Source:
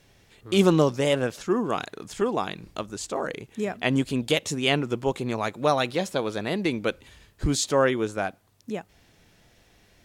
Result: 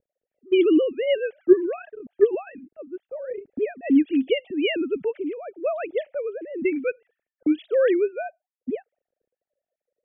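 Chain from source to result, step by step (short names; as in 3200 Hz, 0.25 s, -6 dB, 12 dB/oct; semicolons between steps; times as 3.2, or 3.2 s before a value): sine-wave speech; low shelf 230 Hz +11 dB; fixed phaser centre 2500 Hz, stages 4; low-pass opened by the level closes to 330 Hz, open at -18 dBFS; gain +1.5 dB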